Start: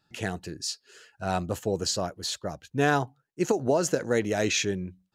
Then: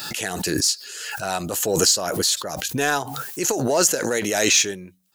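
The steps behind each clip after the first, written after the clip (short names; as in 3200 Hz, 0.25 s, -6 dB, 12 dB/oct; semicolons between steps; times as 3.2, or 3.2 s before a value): RIAA curve recording; in parallel at -5.5 dB: soft clip -21 dBFS, distortion -9 dB; on the sum: backwards sustainer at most 30 dB/s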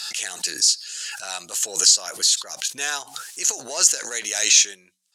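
weighting filter ITU-R 468; gain -8.5 dB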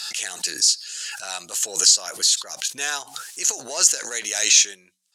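nothing audible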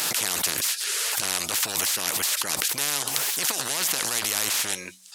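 spectral compressor 10:1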